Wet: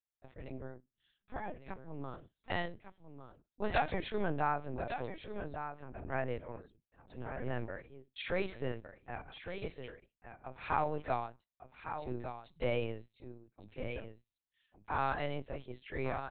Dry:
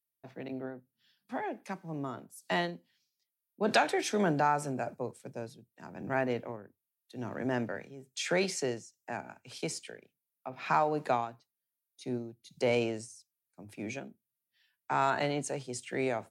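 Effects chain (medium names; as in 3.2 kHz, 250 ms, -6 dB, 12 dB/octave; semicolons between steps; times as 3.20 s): on a send: delay 1154 ms -9 dB; on the sum: LPC vocoder at 8 kHz pitch kept; trim -5 dB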